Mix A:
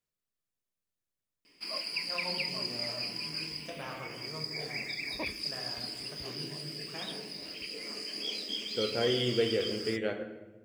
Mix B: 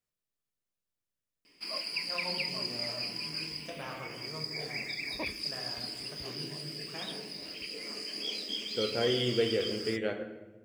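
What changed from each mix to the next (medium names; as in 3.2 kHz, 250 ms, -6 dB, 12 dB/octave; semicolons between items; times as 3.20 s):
no change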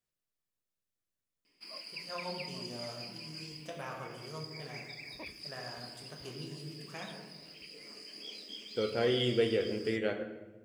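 background -9.5 dB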